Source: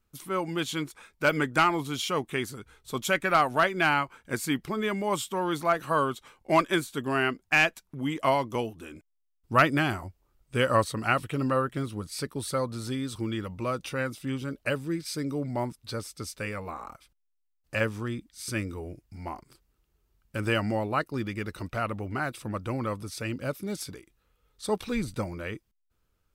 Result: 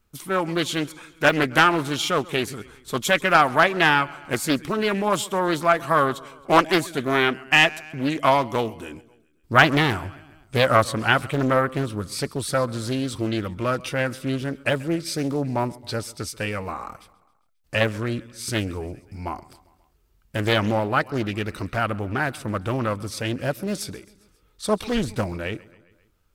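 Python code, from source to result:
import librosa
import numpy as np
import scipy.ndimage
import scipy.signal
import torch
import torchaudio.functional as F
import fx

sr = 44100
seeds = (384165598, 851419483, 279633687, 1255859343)

y = fx.echo_feedback(x, sr, ms=134, feedback_pct=59, wet_db=-22)
y = fx.doppler_dist(y, sr, depth_ms=0.53)
y = y * 10.0 ** (6.5 / 20.0)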